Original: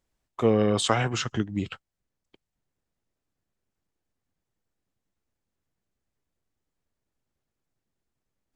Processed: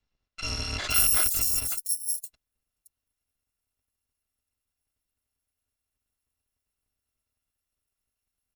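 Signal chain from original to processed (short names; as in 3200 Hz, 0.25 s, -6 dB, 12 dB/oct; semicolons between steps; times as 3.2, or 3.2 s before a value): FFT order left unsorted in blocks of 256 samples; tube stage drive 21 dB, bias 0.65; bands offset in time lows, highs 0.52 s, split 5500 Hz; gain +5.5 dB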